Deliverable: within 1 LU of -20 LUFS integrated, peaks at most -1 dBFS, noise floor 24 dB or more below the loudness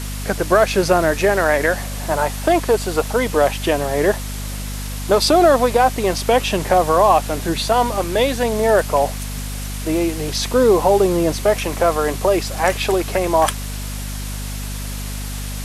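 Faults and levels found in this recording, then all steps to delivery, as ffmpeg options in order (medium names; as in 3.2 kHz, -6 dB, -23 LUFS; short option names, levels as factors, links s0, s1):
hum 50 Hz; highest harmonic 250 Hz; hum level -25 dBFS; noise floor -27 dBFS; noise floor target -42 dBFS; loudness -18.0 LUFS; peak level -2.0 dBFS; loudness target -20.0 LUFS
-> -af "bandreject=f=50:t=h:w=6,bandreject=f=100:t=h:w=6,bandreject=f=150:t=h:w=6,bandreject=f=200:t=h:w=6,bandreject=f=250:t=h:w=6"
-af "afftdn=nr=15:nf=-27"
-af "volume=0.794"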